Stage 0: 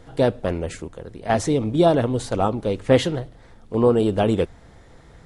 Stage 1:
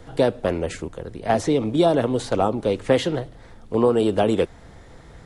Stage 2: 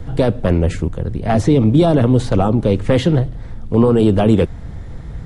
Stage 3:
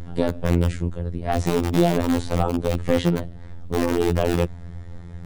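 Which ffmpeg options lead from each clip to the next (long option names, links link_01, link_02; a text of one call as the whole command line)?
ffmpeg -i in.wav -filter_complex "[0:a]acrossover=split=220|800|5600[link_01][link_02][link_03][link_04];[link_01]acompressor=threshold=-34dB:ratio=4[link_05];[link_02]acompressor=threshold=-19dB:ratio=4[link_06];[link_03]acompressor=threshold=-29dB:ratio=4[link_07];[link_04]acompressor=threshold=-44dB:ratio=4[link_08];[link_05][link_06][link_07][link_08]amix=inputs=4:normalize=0,volume=3dB" out.wav
ffmpeg -i in.wav -af "apsyclip=13.5dB,bass=frequency=250:gain=14,treble=frequency=4000:gain=-3,volume=-10dB" out.wav
ffmpeg -i in.wav -filter_complex "[0:a]asplit=2[link_01][link_02];[link_02]aeval=exprs='(mod(1.78*val(0)+1,2)-1)/1.78':channel_layout=same,volume=-6.5dB[link_03];[link_01][link_03]amix=inputs=2:normalize=0,afftfilt=real='hypot(re,im)*cos(PI*b)':imag='0':win_size=2048:overlap=0.75,volume=-6.5dB" out.wav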